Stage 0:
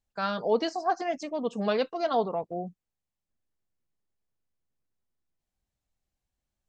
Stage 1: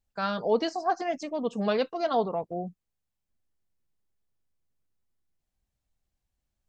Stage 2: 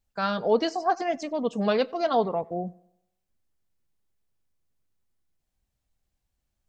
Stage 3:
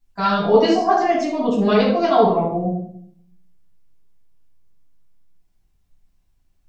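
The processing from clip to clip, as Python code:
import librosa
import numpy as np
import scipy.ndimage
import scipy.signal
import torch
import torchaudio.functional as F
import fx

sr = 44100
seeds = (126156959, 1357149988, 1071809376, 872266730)

y1 = fx.low_shelf(x, sr, hz=130.0, db=5.0)
y2 = fx.echo_tape(y1, sr, ms=93, feedback_pct=47, wet_db=-23, lp_hz=3100.0, drive_db=19.0, wow_cents=20)
y2 = y2 * librosa.db_to_amplitude(2.5)
y3 = fx.room_shoebox(y2, sr, seeds[0], volume_m3=830.0, walls='furnished', distance_m=9.6)
y3 = y3 * librosa.db_to_amplitude(-3.0)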